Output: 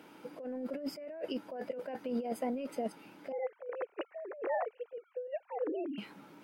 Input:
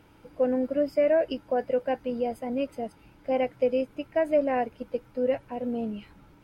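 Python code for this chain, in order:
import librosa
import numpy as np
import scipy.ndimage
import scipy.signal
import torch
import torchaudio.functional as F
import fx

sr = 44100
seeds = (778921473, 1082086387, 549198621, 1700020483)

y = fx.sine_speech(x, sr, at=(3.32, 5.98))
y = scipy.signal.sosfilt(scipy.signal.butter(4, 190.0, 'highpass', fs=sr, output='sos'), y)
y = fx.over_compress(y, sr, threshold_db=-34.0, ratio=-1.0)
y = y * 10.0 ** (-4.0 / 20.0)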